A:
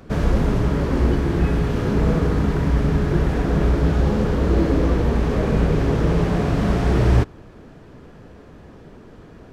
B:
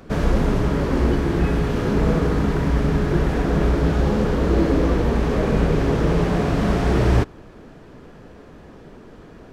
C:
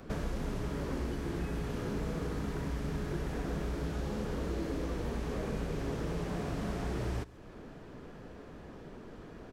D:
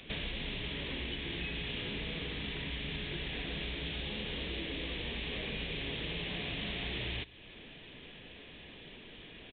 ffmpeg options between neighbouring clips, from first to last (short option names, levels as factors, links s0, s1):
-af "equalizer=f=90:w=0.84:g=-4.5,volume=1.19"
-filter_complex "[0:a]acrossover=split=2000|6100[s0][s1][s2];[s0]acompressor=threshold=0.0355:ratio=4[s3];[s1]acompressor=threshold=0.00316:ratio=4[s4];[s2]acompressor=threshold=0.00224:ratio=4[s5];[s3][s4][s5]amix=inputs=3:normalize=0,aecho=1:1:137:0.0944,volume=0.531"
-af "aexciter=amount=14.6:drive=4.4:freq=2100,aresample=8000,aresample=44100,volume=0.501"